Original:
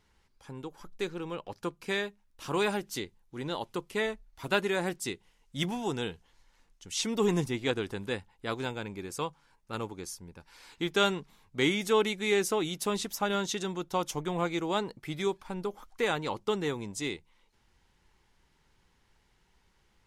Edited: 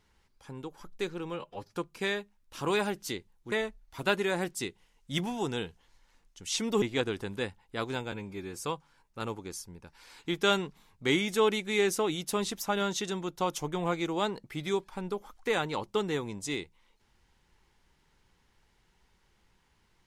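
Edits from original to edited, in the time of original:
1.34–1.60 s: stretch 1.5×
3.39–3.97 s: delete
7.27–7.52 s: delete
8.82–9.16 s: stretch 1.5×

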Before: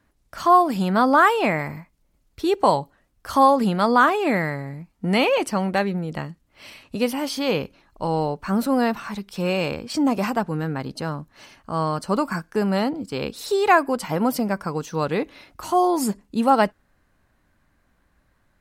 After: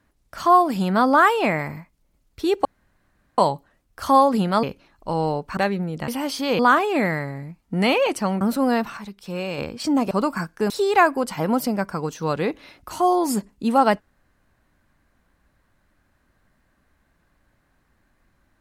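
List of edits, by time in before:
2.65 s: insert room tone 0.73 s
3.90–5.72 s: swap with 7.57–8.51 s
6.23–7.06 s: delete
9.07–9.68 s: gain -5.5 dB
10.21–12.06 s: delete
12.65–13.42 s: delete

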